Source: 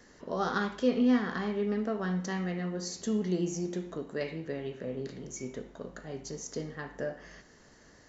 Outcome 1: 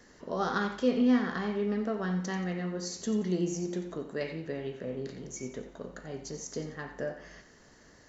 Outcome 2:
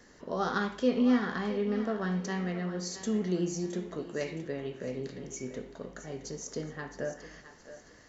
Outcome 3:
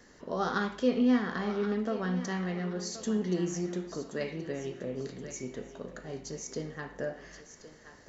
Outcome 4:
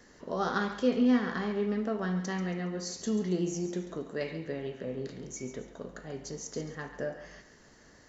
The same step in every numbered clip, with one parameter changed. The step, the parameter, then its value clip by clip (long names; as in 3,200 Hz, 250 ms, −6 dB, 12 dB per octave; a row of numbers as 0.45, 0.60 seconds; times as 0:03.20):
feedback echo with a high-pass in the loop, delay time: 89, 667, 1,076, 138 milliseconds